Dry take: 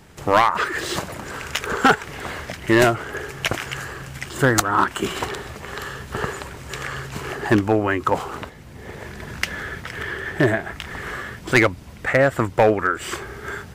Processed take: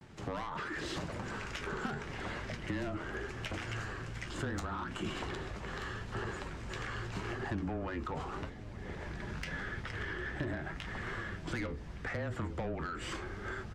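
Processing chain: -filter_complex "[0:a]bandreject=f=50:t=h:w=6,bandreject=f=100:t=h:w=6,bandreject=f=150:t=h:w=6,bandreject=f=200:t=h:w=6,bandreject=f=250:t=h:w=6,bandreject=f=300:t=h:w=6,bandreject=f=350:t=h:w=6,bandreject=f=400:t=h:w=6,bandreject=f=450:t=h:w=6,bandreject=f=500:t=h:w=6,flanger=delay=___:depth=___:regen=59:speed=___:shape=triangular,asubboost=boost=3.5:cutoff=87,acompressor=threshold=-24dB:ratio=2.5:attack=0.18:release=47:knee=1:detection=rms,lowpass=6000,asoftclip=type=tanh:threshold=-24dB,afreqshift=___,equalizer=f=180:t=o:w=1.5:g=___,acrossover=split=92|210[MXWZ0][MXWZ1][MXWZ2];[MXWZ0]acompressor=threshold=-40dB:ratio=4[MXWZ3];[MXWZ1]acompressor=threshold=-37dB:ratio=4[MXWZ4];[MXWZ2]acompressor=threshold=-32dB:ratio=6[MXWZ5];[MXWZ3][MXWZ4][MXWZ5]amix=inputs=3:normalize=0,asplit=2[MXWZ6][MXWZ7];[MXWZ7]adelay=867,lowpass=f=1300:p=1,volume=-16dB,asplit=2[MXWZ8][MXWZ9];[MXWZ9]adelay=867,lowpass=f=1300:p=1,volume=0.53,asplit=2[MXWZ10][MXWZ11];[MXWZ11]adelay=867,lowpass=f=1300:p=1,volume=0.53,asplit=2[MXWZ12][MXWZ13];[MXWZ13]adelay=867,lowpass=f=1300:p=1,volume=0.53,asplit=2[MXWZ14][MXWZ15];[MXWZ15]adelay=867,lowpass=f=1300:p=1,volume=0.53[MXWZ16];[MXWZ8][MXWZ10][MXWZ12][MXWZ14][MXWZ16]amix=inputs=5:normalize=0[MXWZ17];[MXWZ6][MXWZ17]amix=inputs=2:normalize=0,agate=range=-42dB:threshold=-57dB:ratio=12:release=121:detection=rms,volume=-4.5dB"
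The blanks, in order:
7.3, 5.9, 0.81, -21, 8.5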